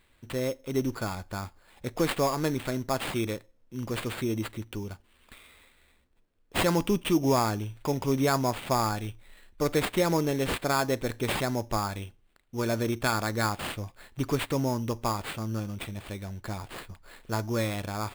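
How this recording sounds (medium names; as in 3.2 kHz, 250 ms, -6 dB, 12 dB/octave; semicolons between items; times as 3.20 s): aliases and images of a low sample rate 5.9 kHz, jitter 0%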